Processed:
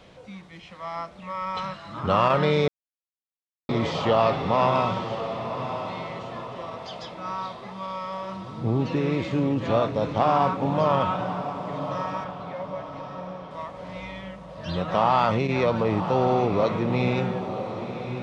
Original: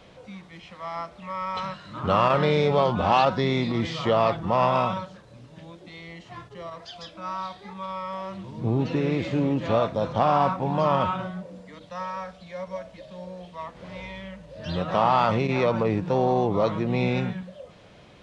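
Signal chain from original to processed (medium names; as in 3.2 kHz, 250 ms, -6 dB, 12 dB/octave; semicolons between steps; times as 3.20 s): 12.24–13.51 s: distance through air 210 m; echo that smears into a reverb 1068 ms, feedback 45%, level -9 dB; 2.68–3.69 s: mute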